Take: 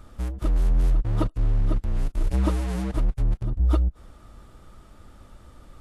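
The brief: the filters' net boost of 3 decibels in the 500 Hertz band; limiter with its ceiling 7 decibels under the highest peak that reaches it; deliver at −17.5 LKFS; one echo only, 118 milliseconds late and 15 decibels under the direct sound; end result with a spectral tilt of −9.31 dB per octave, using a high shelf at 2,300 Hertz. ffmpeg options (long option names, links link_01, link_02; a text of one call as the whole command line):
ffmpeg -i in.wav -af "equalizer=frequency=500:width_type=o:gain=4.5,highshelf=frequency=2300:gain=-8.5,alimiter=limit=-17.5dB:level=0:latency=1,aecho=1:1:118:0.178,volume=10dB" out.wav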